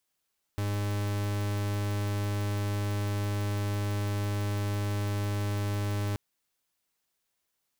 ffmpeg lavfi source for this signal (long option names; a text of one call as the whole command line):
ffmpeg -f lavfi -i "aevalsrc='0.0316*(2*lt(mod(102*t,1),0.43)-1)':duration=5.58:sample_rate=44100" out.wav